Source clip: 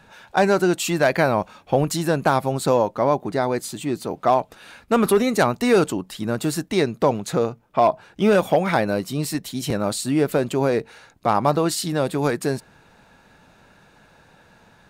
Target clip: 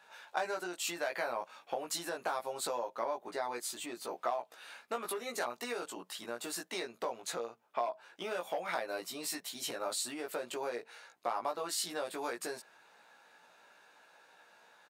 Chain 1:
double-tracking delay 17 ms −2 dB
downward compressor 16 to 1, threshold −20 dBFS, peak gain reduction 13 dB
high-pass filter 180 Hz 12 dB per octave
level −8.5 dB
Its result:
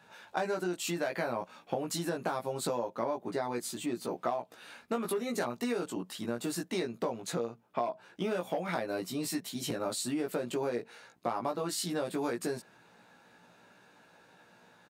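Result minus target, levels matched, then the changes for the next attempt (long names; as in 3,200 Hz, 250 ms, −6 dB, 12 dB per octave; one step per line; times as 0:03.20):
250 Hz band +8.5 dB
change: high-pass filter 580 Hz 12 dB per octave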